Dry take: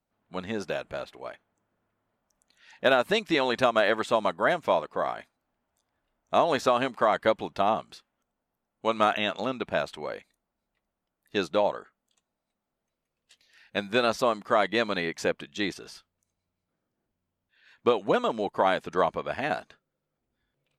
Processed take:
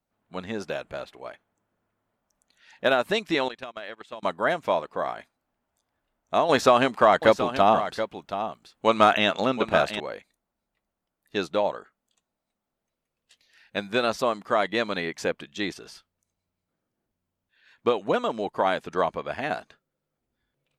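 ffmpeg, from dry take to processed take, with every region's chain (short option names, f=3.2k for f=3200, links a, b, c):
-filter_complex "[0:a]asettb=1/sr,asplit=3[a][b][c];[a]atrim=end=3.484[d];[b]atrim=start=3.48:end=4.23,asetpts=PTS-STARTPTS,afade=t=in:d=0.004:c=qsin,afade=t=out:st=0.746:d=0.004:c=qsin,agate=range=-19dB:threshold=-26dB:ratio=16:release=100:detection=peak,equalizer=f=2.8k:t=o:w=1.5:g=5.5,acompressor=threshold=-35dB:ratio=5:attack=3.2:release=140:knee=1:detection=peak[e];[c]atrim=start=4.226[f];[d][e]acrossfade=d=0.004:c1=hsin:c2=qsin[g];[g][f]acrossfade=d=0.004:c1=qsin:c2=hsin,asettb=1/sr,asplit=3[h][i][j];[h]atrim=end=6.494[k];[i]atrim=start=6.49:end=10,asetpts=PTS-STARTPTS,afade=t=in:d=0.004:c=qsin,afade=t=out:st=3.506:d=0.004:c=qsin,acontrast=49,aecho=1:1:727:0.299,atrim=end_sample=154791[l];[j]atrim=start=9.996[m];[k][l]acrossfade=d=0.004:c1=hsin:c2=qsin[n];[n][m]acrossfade=d=0.004:c1=qsin:c2=hsin"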